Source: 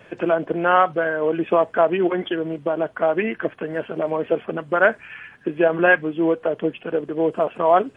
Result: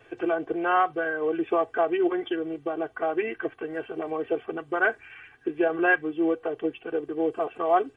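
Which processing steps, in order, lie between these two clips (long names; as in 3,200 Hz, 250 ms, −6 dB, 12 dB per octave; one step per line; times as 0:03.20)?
comb filter 2.6 ms, depth 88%
level −8.5 dB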